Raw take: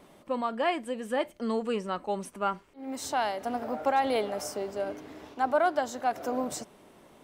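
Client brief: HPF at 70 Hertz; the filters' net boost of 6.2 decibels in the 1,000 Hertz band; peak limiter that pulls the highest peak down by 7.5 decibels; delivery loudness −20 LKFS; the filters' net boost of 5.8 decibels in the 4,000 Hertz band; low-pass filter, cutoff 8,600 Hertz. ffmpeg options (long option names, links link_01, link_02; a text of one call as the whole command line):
ffmpeg -i in.wav -af "highpass=70,lowpass=8600,equalizer=frequency=1000:width_type=o:gain=8.5,equalizer=frequency=4000:width_type=o:gain=7.5,volume=9.5dB,alimiter=limit=-8dB:level=0:latency=1" out.wav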